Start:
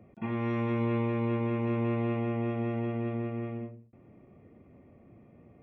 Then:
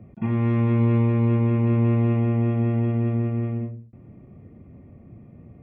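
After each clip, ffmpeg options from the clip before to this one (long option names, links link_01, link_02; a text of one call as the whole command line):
ffmpeg -i in.wav -af "bass=frequency=250:gain=11,treble=frequency=4000:gain=-7,volume=2.5dB" out.wav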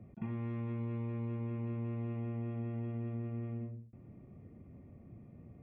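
ffmpeg -i in.wav -af "acompressor=threshold=-29dB:ratio=4,volume=-8dB" out.wav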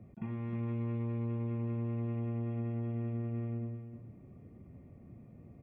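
ffmpeg -i in.wav -af "aecho=1:1:309:0.398" out.wav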